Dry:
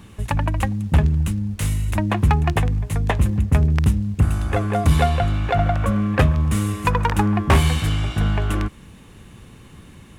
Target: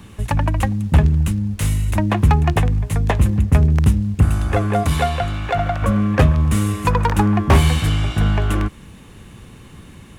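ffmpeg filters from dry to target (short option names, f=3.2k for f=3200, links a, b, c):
-filter_complex "[0:a]asettb=1/sr,asplit=3[a][b][c];[a]atrim=end=4.834[d];[b]atrim=start=4.83:end=5.82,asetpts=PTS-STARTPTS,afade=t=in:d=0.004:c=qsin,afade=t=out:st=0.986:d=0.004:c=qsin,lowshelf=f=490:g=-6.5[e];[c]atrim=start=5.816[f];[d][e]acrossfade=d=0.004:c1=hsin:c2=qsin[g];[g][f]acrossfade=d=0.004:c1=qsin:c2=hsin,acrossover=split=510|910[h][i][j];[j]asoftclip=type=tanh:threshold=-20dB[k];[h][i][k]amix=inputs=3:normalize=0,volume=3dB"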